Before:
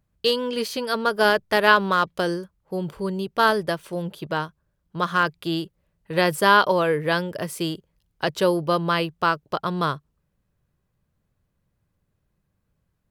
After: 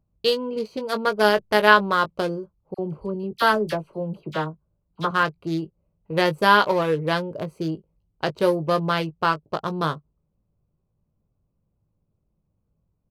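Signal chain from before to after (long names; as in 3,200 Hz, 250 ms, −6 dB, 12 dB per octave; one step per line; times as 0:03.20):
adaptive Wiener filter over 25 samples
double-tracking delay 19 ms −9 dB
0:02.74–0:05.11: all-pass dispersion lows, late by 47 ms, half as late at 1,300 Hz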